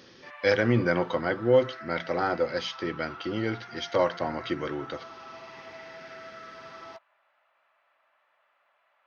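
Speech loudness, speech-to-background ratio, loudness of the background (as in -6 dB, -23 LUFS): -28.0 LUFS, 16.0 dB, -44.0 LUFS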